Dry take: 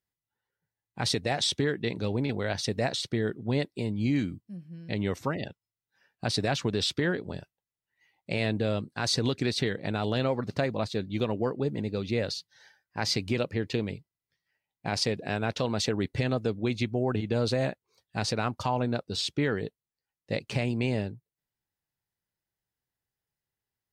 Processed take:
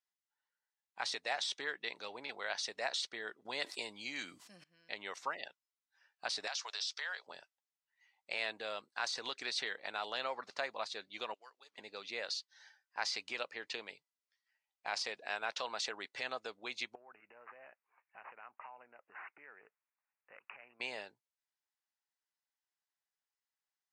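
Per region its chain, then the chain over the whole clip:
0:03.45–0:04.64: high-shelf EQ 4,100 Hz +7 dB + envelope flattener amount 70%
0:06.47–0:07.27: high-pass filter 590 Hz 24 dB per octave + parametric band 5,500 Hz +13.5 dB 0.97 octaves + downward compressor 8 to 1, threshold −31 dBFS
0:11.34–0:11.78: first difference + transient designer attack +3 dB, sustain −2 dB + linearly interpolated sample-rate reduction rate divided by 3×
0:16.95–0:20.80: downward compressor 8 to 1, threshold −41 dBFS + bad sample-rate conversion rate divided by 8×, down none, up filtered
whole clip: de-essing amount 70%; Chebyshev band-pass filter 940–7,000 Hz, order 2; level −3 dB

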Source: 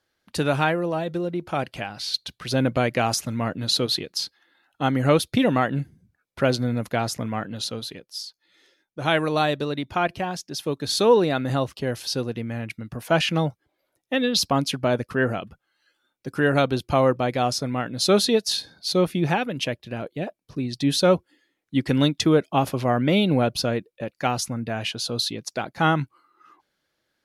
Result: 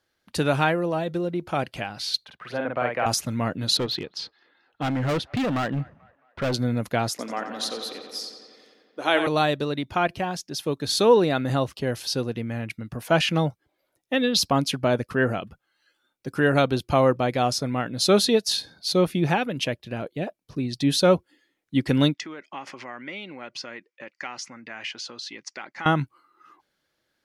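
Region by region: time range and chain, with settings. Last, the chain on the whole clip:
0:02.25–0:03.06: high-pass filter 85 Hz + three-way crossover with the lows and the highs turned down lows −14 dB, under 540 Hz, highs −22 dB, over 2,200 Hz + double-tracking delay 49 ms −3 dB
0:03.77–0:06.54: low-pass filter 3,600 Hz + gain into a clipping stage and back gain 22 dB + delay with a band-pass on its return 219 ms, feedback 48%, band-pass 1,100 Hz, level −23 dB
0:07.10–0:09.27: high-pass filter 260 Hz 24 dB per octave + feedback echo with a low-pass in the loop 89 ms, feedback 78%, low-pass 4,900 Hz, level −7.5 dB
0:22.14–0:25.86: downward compressor 4 to 1, threshold −28 dBFS + loudspeaker in its box 430–6,600 Hz, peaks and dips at 460 Hz −9 dB, 670 Hz −9 dB, 2,000 Hz +9 dB, 3,800 Hz −8 dB
whole clip: no processing

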